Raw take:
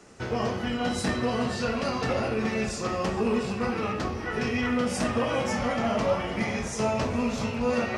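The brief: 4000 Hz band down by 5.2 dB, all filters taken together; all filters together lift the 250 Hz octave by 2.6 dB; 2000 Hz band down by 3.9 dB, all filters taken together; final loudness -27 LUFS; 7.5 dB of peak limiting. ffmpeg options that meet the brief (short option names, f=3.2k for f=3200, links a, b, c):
-af "equalizer=f=250:t=o:g=3,equalizer=f=2k:t=o:g=-3.5,equalizer=f=4k:t=o:g=-6,volume=2.5dB,alimiter=limit=-18dB:level=0:latency=1"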